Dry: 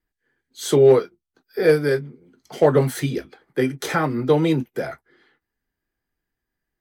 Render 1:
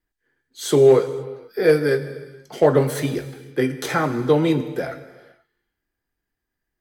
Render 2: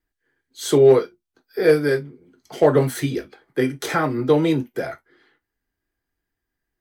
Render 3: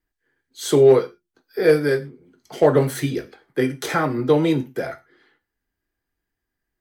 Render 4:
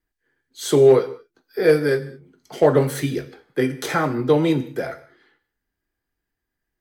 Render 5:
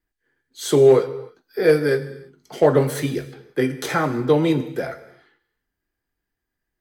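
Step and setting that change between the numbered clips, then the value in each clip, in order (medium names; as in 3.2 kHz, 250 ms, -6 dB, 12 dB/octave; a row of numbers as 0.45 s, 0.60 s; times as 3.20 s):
gated-style reverb, gate: 540 ms, 80 ms, 140 ms, 240 ms, 360 ms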